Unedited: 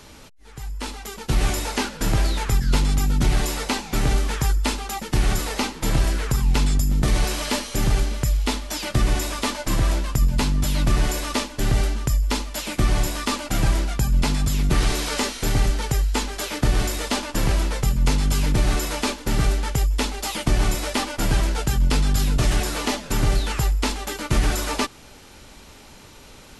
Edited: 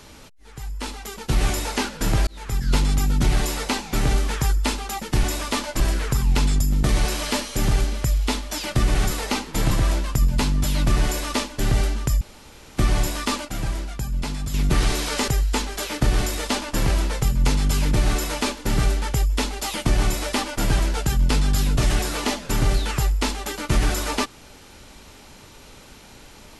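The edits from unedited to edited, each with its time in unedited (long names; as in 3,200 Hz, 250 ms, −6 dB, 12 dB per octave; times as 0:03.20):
0:02.27–0:02.74: fade in
0:05.23–0:05.99: swap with 0:09.14–0:09.71
0:12.21–0:12.77: fill with room tone
0:13.45–0:14.54: clip gain −6.5 dB
0:15.28–0:15.89: remove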